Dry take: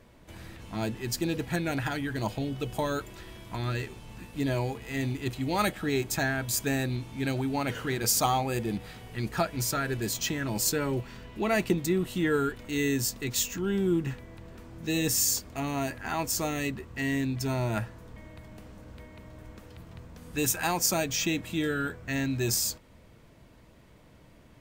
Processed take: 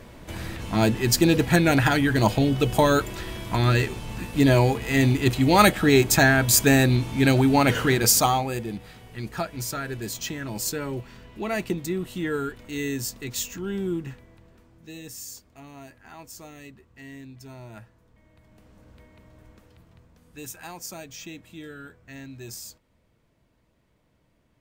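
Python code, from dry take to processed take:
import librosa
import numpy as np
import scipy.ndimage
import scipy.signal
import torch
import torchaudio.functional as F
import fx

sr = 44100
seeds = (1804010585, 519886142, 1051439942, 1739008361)

y = fx.gain(x, sr, db=fx.line((7.82, 11.0), (8.72, -1.5), (13.86, -1.5), (15.04, -13.5), (18.13, -13.5), (18.83, -5.0), (19.47, -5.0), (20.36, -11.5)))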